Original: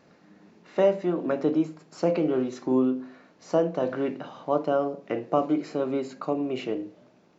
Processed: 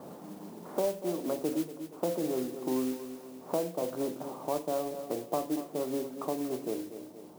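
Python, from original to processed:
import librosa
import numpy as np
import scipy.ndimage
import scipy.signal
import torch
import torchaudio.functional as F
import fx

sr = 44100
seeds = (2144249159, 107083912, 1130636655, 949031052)

p1 = scipy.signal.sosfilt(scipy.signal.cheby1(3, 1.0, 990.0, 'lowpass', fs=sr, output='sos'), x)
p2 = fx.low_shelf(p1, sr, hz=180.0, db=-6.0)
p3 = fx.mod_noise(p2, sr, seeds[0], snr_db=15)
p4 = p3 + fx.echo_feedback(p3, sr, ms=235, feedback_pct=29, wet_db=-14, dry=0)
p5 = fx.band_squash(p4, sr, depth_pct=70)
y = F.gain(torch.from_numpy(p5), -5.5).numpy()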